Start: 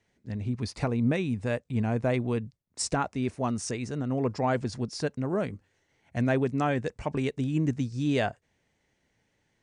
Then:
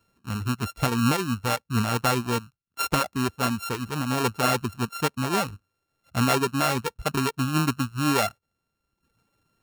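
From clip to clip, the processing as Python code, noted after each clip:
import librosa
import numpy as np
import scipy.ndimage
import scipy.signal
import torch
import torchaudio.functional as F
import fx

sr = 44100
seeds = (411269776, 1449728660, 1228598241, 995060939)

y = np.r_[np.sort(x[:len(x) // 32 * 32].reshape(-1, 32), axis=1).ravel(), x[len(x) // 32 * 32:]]
y = fx.dereverb_blind(y, sr, rt60_s=0.89)
y = F.gain(torch.from_numpy(y), 4.5).numpy()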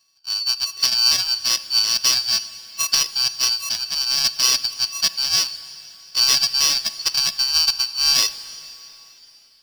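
y = fx.band_shuffle(x, sr, order='4321')
y = fx.rev_plate(y, sr, seeds[0], rt60_s=3.6, hf_ratio=0.95, predelay_ms=0, drr_db=13.5)
y = F.gain(torch.from_numpy(y), 5.0).numpy()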